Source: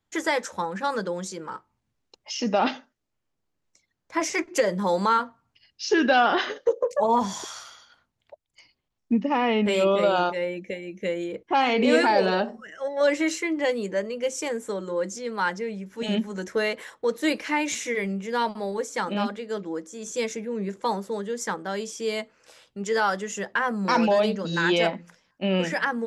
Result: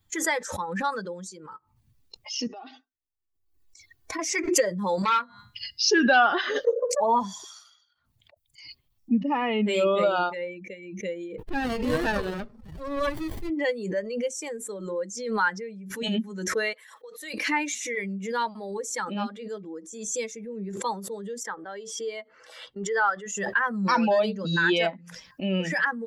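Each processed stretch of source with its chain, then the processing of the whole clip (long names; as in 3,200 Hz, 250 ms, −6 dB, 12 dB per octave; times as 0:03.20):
0:02.47–0:04.19: comb filter 2.7 ms, depth 80% + downward compressor 10 to 1, threshold −30 dBFS
0:05.02–0:05.91: hum removal 205.1 Hz, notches 39 + saturating transformer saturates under 1,900 Hz
0:11.38–0:13.50: spectral tilt +2.5 dB per octave + windowed peak hold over 33 samples
0:16.73–0:17.34: Bessel high-pass filter 630 Hz + downward compressor 10 to 1, threshold −31 dBFS
0:21.43–0:23.26: Butterworth band-reject 2,500 Hz, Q 7.5 + bass and treble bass −10 dB, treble −11 dB
whole clip: spectral dynamics exaggerated over time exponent 1.5; dynamic equaliser 1,500 Hz, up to +5 dB, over −40 dBFS, Q 1.9; background raised ahead of every attack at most 55 dB per second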